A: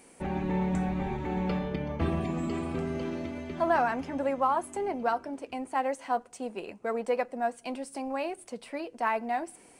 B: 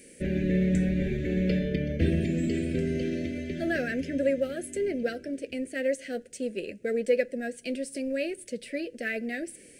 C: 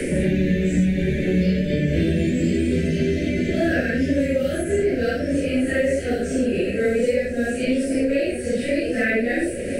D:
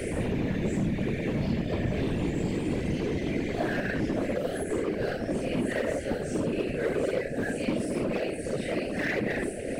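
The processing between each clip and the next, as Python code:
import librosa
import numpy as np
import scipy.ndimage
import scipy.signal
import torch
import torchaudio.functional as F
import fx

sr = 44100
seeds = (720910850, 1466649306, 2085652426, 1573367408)

y1 = scipy.signal.sosfilt(scipy.signal.ellip(3, 1.0, 70, [560.0, 1700.0], 'bandstop', fs=sr, output='sos'), x)
y1 = y1 * 10.0 ** (5.0 / 20.0)
y2 = fx.phase_scramble(y1, sr, seeds[0], window_ms=200)
y2 = fx.echo_diffused(y2, sr, ms=1116, feedback_pct=55, wet_db=-13.5)
y2 = fx.band_squash(y2, sr, depth_pct=100)
y2 = y2 * 10.0 ** (6.5 / 20.0)
y3 = np.clip(y2, -10.0 ** (-17.5 / 20.0), 10.0 ** (-17.5 / 20.0))
y3 = fx.whisperise(y3, sr, seeds[1])
y3 = y3 * 10.0 ** (-7.0 / 20.0)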